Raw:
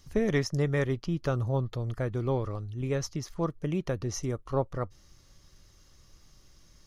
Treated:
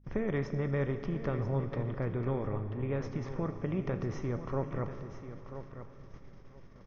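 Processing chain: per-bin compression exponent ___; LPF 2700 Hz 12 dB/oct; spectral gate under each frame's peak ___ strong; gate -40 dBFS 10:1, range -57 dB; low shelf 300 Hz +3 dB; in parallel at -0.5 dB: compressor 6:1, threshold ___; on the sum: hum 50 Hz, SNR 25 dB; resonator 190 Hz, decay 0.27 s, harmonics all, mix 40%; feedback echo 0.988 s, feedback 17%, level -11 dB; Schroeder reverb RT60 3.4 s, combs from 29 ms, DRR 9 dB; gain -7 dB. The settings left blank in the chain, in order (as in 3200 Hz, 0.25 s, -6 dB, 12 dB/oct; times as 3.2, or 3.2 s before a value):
0.6, -45 dB, -33 dBFS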